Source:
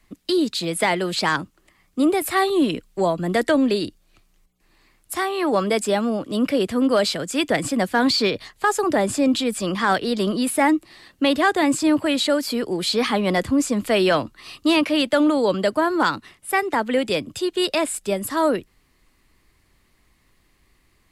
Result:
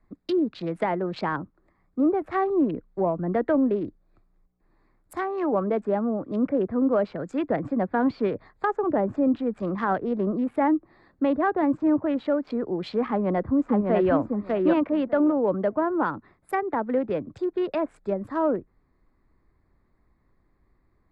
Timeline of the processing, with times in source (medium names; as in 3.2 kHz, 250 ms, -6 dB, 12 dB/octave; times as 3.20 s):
13.08–14.13 s: echo throw 600 ms, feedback 15%, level -2.5 dB
whole clip: local Wiener filter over 15 samples; low-pass that closes with the level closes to 1.4 kHz, closed at -18.5 dBFS; treble shelf 3.2 kHz -9.5 dB; trim -3 dB